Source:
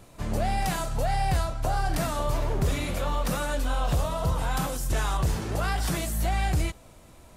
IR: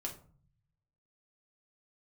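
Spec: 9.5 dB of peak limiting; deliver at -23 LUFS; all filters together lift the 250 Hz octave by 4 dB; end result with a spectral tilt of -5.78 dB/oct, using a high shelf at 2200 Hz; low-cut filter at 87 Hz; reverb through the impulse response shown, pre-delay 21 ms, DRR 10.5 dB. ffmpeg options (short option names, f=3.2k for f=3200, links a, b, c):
-filter_complex "[0:a]highpass=87,equalizer=f=250:t=o:g=6,highshelf=f=2.2k:g=-5.5,alimiter=limit=-22dB:level=0:latency=1,asplit=2[a][b];[1:a]atrim=start_sample=2205,adelay=21[c];[b][c]afir=irnorm=-1:irlink=0,volume=-10dB[d];[a][d]amix=inputs=2:normalize=0,volume=8.5dB"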